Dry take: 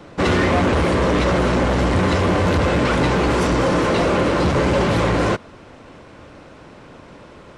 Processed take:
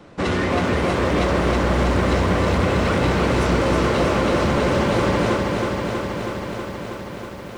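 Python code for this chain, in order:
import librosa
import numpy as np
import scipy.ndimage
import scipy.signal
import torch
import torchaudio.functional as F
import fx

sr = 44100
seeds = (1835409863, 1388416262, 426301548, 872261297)

y = fx.peak_eq(x, sr, hz=210.0, db=3.0, octaves=0.25)
y = fx.echo_crushed(y, sr, ms=321, feedback_pct=80, bits=8, wet_db=-4)
y = F.gain(torch.from_numpy(y), -4.5).numpy()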